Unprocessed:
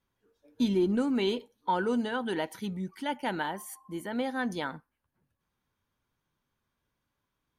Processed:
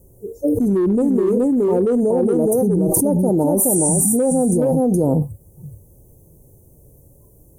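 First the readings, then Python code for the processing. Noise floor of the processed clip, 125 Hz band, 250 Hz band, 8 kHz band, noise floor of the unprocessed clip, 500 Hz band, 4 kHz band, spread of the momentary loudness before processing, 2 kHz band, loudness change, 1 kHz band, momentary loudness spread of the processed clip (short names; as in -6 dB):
-50 dBFS, +19.5 dB, +14.5 dB, +30.0 dB, -83 dBFS, +16.5 dB, under -15 dB, 11 LU, under -10 dB, +14.5 dB, +4.5 dB, 5 LU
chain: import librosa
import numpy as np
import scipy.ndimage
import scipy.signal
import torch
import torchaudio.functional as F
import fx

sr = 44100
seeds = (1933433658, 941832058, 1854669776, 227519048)

p1 = fx.noise_reduce_blind(x, sr, reduce_db=14)
p2 = fx.spec_repair(p1, sr, seeds[0], start_s=3.77, length_s=0.35, low_hz=300.0, high_hz=10000.0, source='before')
p3 = scipy.signal.sosfilt(scipy.signal.cheby2(4, 70, [1500.0, 3400.0], 'bandstop', fs=sr, output='sos'), p2)
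p4 = fx.peak_eq(p3, sr, hz=230.0, db=-9.0, octaves=0.84)
p5 = fx.hpss(p4, sr, part='harmonic', gain_db=7)
p6 = np.clip(p5, -10.0 ** (-24.0 / 20.0), 10.0 ** (-24.0 / 20.0))
p7 = p5 + (p6 * 10.0 ** (-6.0 / 20.0))
p8 = fx.cheby_harmonics(p7, sr, harmonics=(5, 7, 8), levels_db=(-29, -40, -43), full_scale_db=-13.0)
p9 = p8 + fx.echo_single(p8, sr, ms=421, db=-5.5, dry=0)
p10 = fx.env_flatten(p9, sr, amount_pct=100)
y = p10 * 10.0 ** (1.0 / 20.0)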